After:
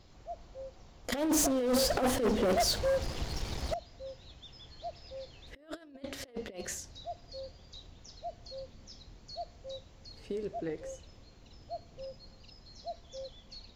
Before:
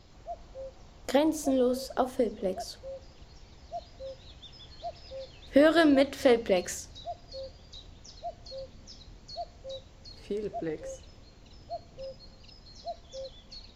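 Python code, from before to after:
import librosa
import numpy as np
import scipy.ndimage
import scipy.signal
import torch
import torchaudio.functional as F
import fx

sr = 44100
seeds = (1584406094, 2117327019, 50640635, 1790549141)

y = fx.over_compress(x, sr, threshold_db=-31.0, ratio=-0.5)
y = fx.leveller(y, sr, passes=5, at=(1.12, 3.74))
y = F.gain(torch.from_numpy(y), -7.5).numpy()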